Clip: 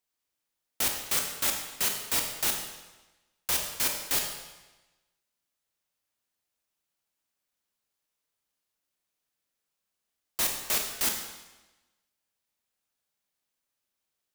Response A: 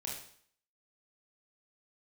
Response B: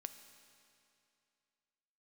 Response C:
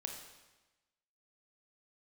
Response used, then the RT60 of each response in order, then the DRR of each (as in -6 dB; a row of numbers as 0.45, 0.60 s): C; 0.60, 2.6, 1.1 s; -3.0, 9.0, 2.5 dB